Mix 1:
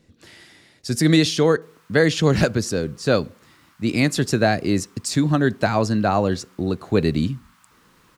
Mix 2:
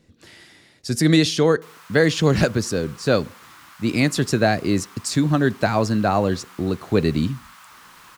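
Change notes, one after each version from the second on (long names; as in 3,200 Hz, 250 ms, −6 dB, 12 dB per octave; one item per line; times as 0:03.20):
background +11.5 dB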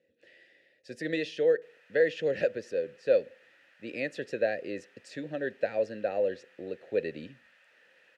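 master: add formant filter e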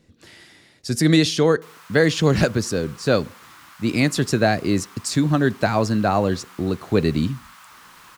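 master: remove formant filter e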